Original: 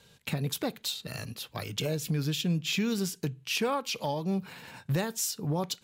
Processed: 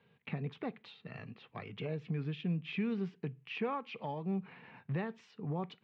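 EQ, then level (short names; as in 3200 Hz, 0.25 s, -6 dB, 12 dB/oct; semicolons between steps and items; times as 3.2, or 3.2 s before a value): speaker cabinet 160–2300 Hz, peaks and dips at 310 Hz -6 dB, 570 Hz -8 dB, 920 Hz -4 dB, 1500 Hz -8 dB; -3.0 dB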